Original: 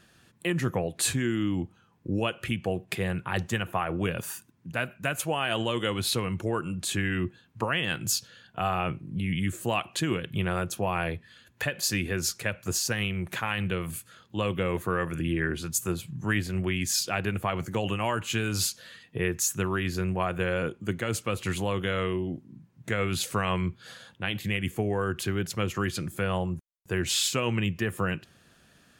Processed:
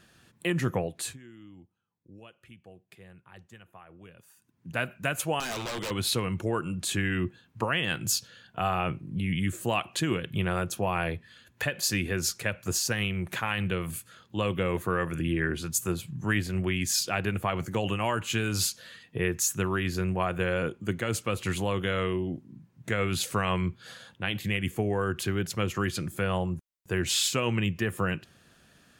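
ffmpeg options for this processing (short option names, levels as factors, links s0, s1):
-filter_complex "[0:a]asettb=1/sr,asplit=3[s0][s1][s2];[s0]atrim=end=5.404[s3];[s1]atrim=start=5.4:end=5.91,asetpts=PTS-STARTPTS,afade=t=in:d=0.004:c=qsin,afade=t=out:st=0.506:d=0.004:c=qsin,aeval=exprs='0.0398*(abs(mod(val(0)/0.0398+3,4)-2)-1)':c=same[s4];[s2]atrim=start=5.906[s5];[s3][s4]acrossfade=d=0.004:c1=hsin:c2=qsin[s6];[s6][s5]acrossfade=d=0.004:c1=qsin:c2=hsin,asplit=3[s7][s8][s9];[s7]atrim=end=1.18,asetpts=PTS-STARTPTS,afade=t=out:st=0.77:d=0.41:silence=0.0794328[s10];[s8]atrim=start=1.18:end=4.36,asetpts=PTS-STARTPTS,volume=0.0794[s11];[s9]atrim=start=4.36,asetpts=PTS-STARTPTS,afade=t=in:d=0.41:silence=0.0794328[s12];[s10][s11][s12]concat=n=3:v=0:a=1"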